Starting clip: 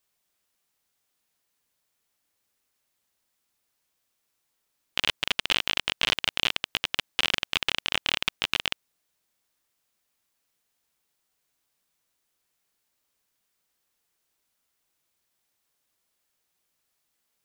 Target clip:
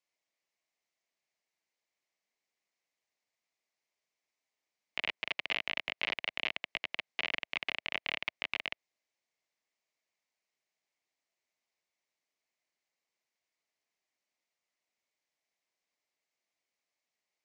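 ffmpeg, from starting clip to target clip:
ffmpeg -i in.wav -filter_complex "[0:a]acrossover=split=4200[link_01][link_02];[link_02]acompressor=threshold=-48dB:ratio=4:attack=1:release=60[link_03];[link_01][link_03]amix=inputs=2:normalize=0,highpass=310,equalizer=frequency=730:width_type=q:width=4:gain=5,equalizer=frequency=1500:width_type=q:width=4:gain=-6,equalizer=frequency=2200:width_type=q:width=4:gain=8,equalizer=frequency=3500:width_type=q:width=4:gain=-3,lowpass=frequency=7000:width=0.5412,lowpass=frequency=7000:width=1.3066,afreqshift=-80,volume=-9dB" out.wav

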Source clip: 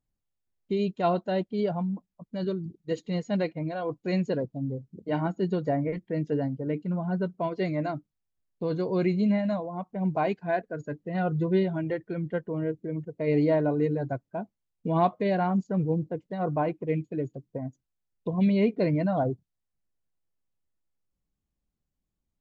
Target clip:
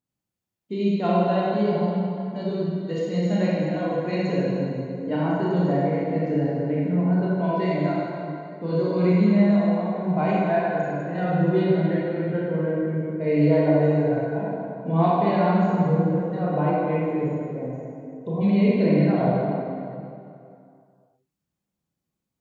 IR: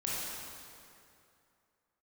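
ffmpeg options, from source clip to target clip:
-filter_complex "[0:a]highpass=110[link_01];[1:a]atrim=start_sample=2205[link_02];[link_01][link_02]afir=irnorm=-1:irlink=0"

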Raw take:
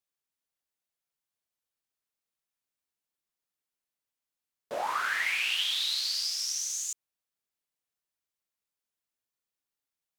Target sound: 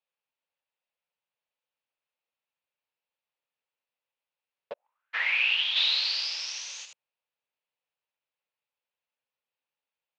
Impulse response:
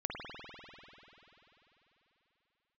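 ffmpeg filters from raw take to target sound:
-filter_complex "[0:a]highpass=130,equalizer=frequency=210:width_type=q:width=4:gain=-8,equalizer=frequency=330:width_type=q:width=4:gain=-9,equalizer=frequency=530:width_type=q:width=4:gain=8,equalizer=frequency=890:width_type=q:width=4:gain=6,equalizer=frequency=2600:width_type=q:width=4:gain=7,lowpass=frequency=4100:width=0.5412,lowpass=frequency=4100:width=1.3066,asplit=3[link_01][link_02][link_03];[link_01]afade=type=out:start_time=4.72:duration=0.02[link_04];[link_02]agate=range=-55dB:threshold=-19dB:ratio=16:detection=peak,afade=type=in:start_time=4.72:duration=0.02,afade=type=out:start_time=5.13:duration=0.02[link_05];[link_03]afade=type=in:start_time=5.13:duration=0.02[link_06];[link_04][link_05][link_06]amix=inputs=3:normalize=0,asplit=3[link_07][link_08][link_09];[link_07]afade=type=out:start_time=5.75:duration=0.02[link_10];[link_08]acontrast=71,afade=type=in:start_time=5.75:duration=0.02,afade=type=out:start_time=6.84:duration=0.02[link_11];[link_09]afade=type=in:start_time=6.84:duration=0.02[link_12];[link_10][link_11][link_12]amix=inputs=3:normalize=0"

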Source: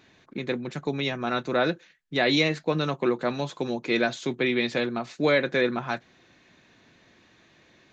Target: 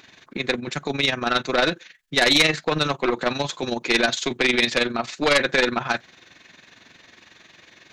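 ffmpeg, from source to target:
ffmpeg -i in.wav -af "tremolo=f=22:d=0.667,aeval=exprs='0.316*(cos(1*acos(clip(val(0)/0.316,-1,1)))-cos(1*PI/2))+0.0708*(cos(4*acos(clip(val(0)/0.316,-1,1)))-cos(4*PI/2))+0.126*(cos(5*acos(clip(val(0)/0.316,-1,1)))-cos(5*PI/2))':channel_layout=same,tiltshelf=frequency=840:gain=-5" out.wav

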